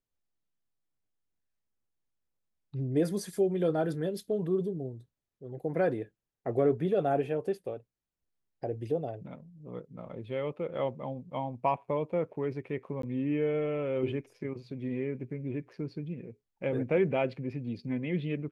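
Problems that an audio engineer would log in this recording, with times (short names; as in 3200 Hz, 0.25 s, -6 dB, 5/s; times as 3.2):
13.02–13.03 gap 13 ms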